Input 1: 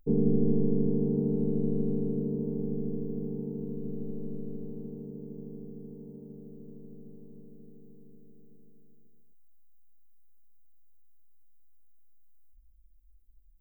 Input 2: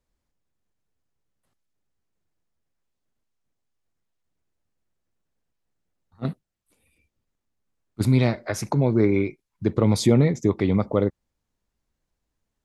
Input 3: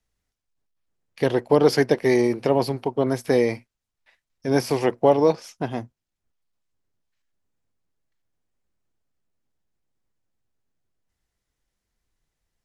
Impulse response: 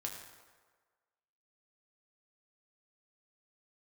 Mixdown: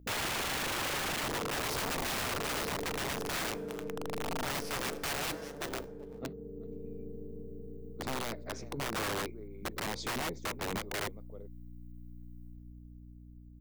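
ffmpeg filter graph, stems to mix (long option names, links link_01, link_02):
-filter_complex "[0:a]aeval=exprs='val(0)+0.00316*(sin(2*PI*60*n/s)+sin(2*PI*2*60*n/s)/2+sin(2*PI*3*60*n/s)/3+sin(2*PI*4*60*n/s)/4+sin(2*PI*5*60*n/s)/5)':channel_layout=same,volume=-4.5dB,asplit=2[link_01][link_02];[link_02]volume=-11dB[link_03];[1:a]highpass=160,lowpass=frequency=6500:width=0.5412,lowpass=frequency=6500:width=1.3066,volume=-17dB,asplit=2[link_04][link_05];[link_05]volume=-22.5dB[link_06];[2:a]aeval=exprs='(mod(3.76*val(0)+1,2)-1)/3.76':channel_layout=same,aeval=exprs='val(0)*sgn(sin(2*PI*150*n/s))':channel_layout=same,volume=-17dB,asplit=4[link_07][link_08][link_09][link_10];[link_08]volume=-11.5dB[link_11];[link_09]volume=-21dB[link_12];[link_10]apad=whole_len=600180[link_13];[link_01][link_13]sidechaincompress=threshold=-49dB:ratio=4:attack=5.4:release=1110[link_14];[link_04][link_07]amix=inputs=2:normalize=0,tremolo=f=7.7:d=0.42,alimiter=level_in=8.5dB:limit=-24dB:level=0:latency=1:release=121,volume=-8.5dB,volume=0dB[link_15];[3:a]atrim=start_sample=2205[link_16];[link_11][link_16]afir=irnorm=-1:irlink=0[link_17];[link_03][link_06][link_12]amix=inputs=3:normalize=0,aecho=0:1:384:1[link_18];[link_14][link_15][link_17][link_18]amix=inputs=4:normalize=0,equalizer=frequency=450:width=1.2:gain=9,dynaudnorm=framelen=640:gausssize=5:maxgain=4dB,aeval=exprs='(mod(29.9*val(0)+1,2)-1)/29.9':channel_layout=same"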